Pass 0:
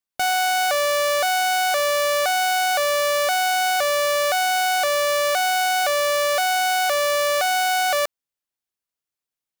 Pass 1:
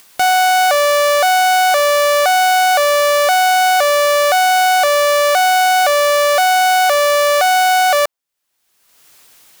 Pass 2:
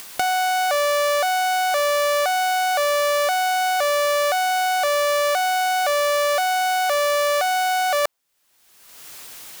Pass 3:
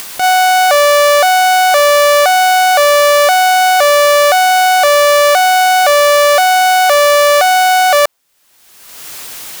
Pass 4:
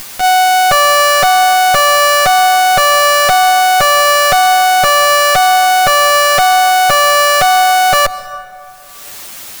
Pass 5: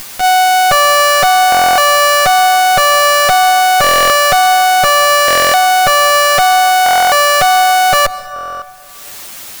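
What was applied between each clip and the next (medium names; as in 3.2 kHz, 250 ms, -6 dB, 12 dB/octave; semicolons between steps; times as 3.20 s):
dynamic bell 760 Hz, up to +5 dB, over -33 dBFS, Q 0.8; upward compressor, threshold -24 dBFS; bass shelf 350 Hz -6.5 dB; trim +5.5 dB
compressor with a negative ratio -20 dBFS, ratio -1
loudness maximiser +11.5 dB
comb filter that takes the minimum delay 9.3 ms; plate-style reverb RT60 2.7 s, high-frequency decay 0.45×, pre-delay 115 ms, DRR 16 dB
buffer glitch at 1.50/3.82/5.26/6.84/8.34 s, samples 1024, times 11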